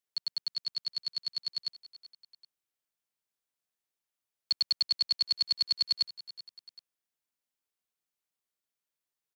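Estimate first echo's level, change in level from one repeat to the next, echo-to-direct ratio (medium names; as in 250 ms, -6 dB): -17.0 dB, -6.5 dB, -16.0 dB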